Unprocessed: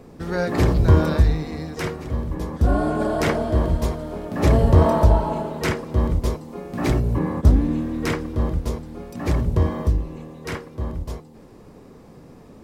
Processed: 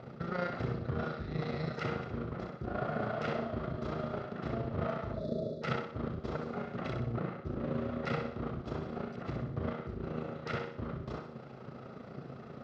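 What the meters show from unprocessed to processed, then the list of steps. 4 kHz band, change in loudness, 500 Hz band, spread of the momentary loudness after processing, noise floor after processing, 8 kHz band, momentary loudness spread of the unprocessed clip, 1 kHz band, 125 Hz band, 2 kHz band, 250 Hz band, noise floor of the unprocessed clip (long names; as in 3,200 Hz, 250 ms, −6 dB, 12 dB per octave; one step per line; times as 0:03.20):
−13.0 dB, −16.0 dB, −12.5 dB, 7 LU, −48 dBFS, below −25 dB, 15 LU, −12.5 dB, −17.5 dB, −11.0 dB, −14.0 dB, −46 dBFS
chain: lower of the sound and its delayed copy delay 1.5 ms
gain on a spectral selection 0:05.14–0:05.62, 660–3,400 Hz −28 dB
reversed playback
downward compressor 6 to 1, threshold −32 dBFS, peak gain reduction 21 dB
reversed playback
amplitude modulation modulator 28 Hz, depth 45%
loudspeaker in its box 110–4,600 Hz, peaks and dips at 130 Hz +10 dB, 230 Hz +7 dB, 370 Hz +9 dB, 920 Hz −3 dB, 1,300 Hz +8 dB
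on a send: feedback echo with a high-pass in the loop 62 ms, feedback 46%, level −5.5 dB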